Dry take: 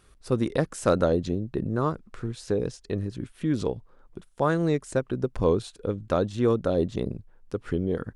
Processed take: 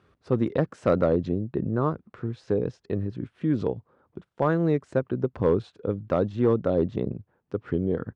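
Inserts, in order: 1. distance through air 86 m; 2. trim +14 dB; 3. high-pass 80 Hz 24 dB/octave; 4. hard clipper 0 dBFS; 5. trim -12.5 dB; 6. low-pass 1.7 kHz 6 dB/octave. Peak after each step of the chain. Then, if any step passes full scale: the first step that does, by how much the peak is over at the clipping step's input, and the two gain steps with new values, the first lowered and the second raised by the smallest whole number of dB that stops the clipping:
-7.5 dBFS, +6.5 dBFS, +6.5 dBFS, 0.0 dBFS, -12.5 dBFS, -12.5 dBFS; step 2, 6.5 dB; step 2 +7 dB, step 5 -5.5 dB

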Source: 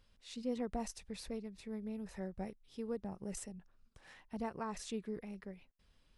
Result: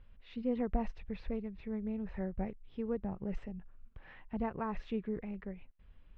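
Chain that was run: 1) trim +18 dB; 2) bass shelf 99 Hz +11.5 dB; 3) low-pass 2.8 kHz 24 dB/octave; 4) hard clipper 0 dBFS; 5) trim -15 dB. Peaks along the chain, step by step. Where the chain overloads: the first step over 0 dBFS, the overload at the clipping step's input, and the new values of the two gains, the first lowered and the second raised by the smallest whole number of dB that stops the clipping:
-8.5 dBFS, -3.0 dBFS, -3.0 dBFS, -3.0 dBFS, -18.0 dBFS; nothing clips

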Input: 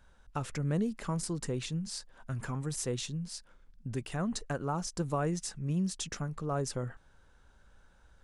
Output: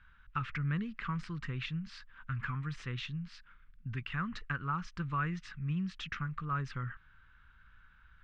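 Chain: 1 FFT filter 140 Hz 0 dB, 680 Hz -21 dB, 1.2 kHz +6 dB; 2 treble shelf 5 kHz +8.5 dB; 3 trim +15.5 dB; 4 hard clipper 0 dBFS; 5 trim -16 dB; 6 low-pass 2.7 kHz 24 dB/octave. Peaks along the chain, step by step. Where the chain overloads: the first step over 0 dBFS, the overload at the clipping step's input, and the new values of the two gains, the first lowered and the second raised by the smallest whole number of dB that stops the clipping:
-14.0 dBFS, -8.0 dBFS, +7.5 dBFS, 0.0 dBFS, -16.0 dBFS, -21.0 dBFS; step 3, 7.5 dB; step 3 +7.5 dB, step 5 -8 dB

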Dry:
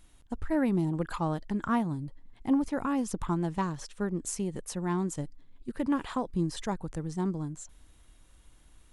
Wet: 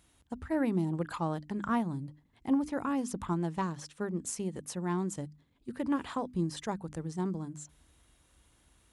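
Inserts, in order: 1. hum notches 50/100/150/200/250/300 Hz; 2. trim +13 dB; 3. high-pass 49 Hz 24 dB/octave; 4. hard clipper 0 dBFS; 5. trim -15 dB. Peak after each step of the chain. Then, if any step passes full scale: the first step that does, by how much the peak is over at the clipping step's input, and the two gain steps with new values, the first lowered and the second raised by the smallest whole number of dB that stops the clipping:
-16.0 dBFS, -3.0 dBFS, -3.0 dBFS, -3.0 dBFS, -18.0 dBFS; nothing clips

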